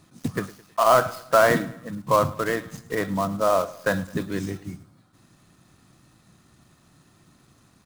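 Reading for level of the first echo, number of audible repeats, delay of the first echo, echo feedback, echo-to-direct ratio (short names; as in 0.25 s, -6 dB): -19.0 dB, 3, 0.106 s, 43%, -18.0 dB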